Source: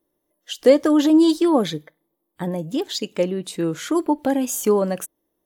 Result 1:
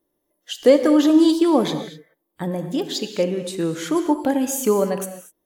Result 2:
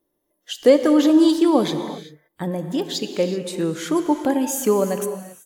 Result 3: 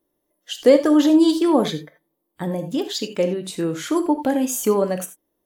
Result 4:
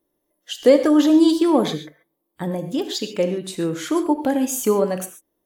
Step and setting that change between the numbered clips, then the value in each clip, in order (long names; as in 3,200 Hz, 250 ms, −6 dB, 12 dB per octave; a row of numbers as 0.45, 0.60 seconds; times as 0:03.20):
reverb whose tail is shaped and stops, gate: 270, 410, 110, 160 milliseconds